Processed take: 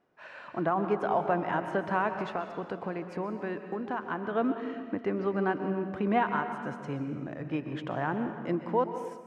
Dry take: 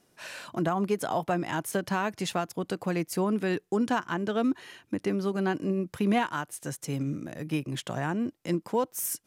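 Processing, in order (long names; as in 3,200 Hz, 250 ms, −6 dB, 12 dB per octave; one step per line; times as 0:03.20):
low-pass filter 1,500 Hz 12 dB per octave
0:02.15–0:04.33: downward compressor, threshold −30 dBFS, peak gain reduction 7.5 dB
low-shelf EQ 360 Hz −11 dB
convolution reverb RT60 1.8 s, pre-delay 116 ms, DRR 7 dB
automatic gain control gain up to 4 dB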